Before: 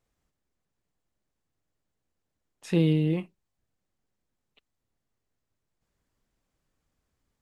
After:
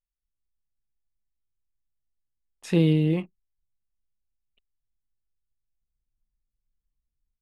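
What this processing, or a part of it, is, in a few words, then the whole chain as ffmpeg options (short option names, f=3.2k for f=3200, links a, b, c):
voice memo with heavy noise removal: -af "anlmdn=0.001,dynaudnorm=f=210:g=3:m=12dB,volume=-7dB"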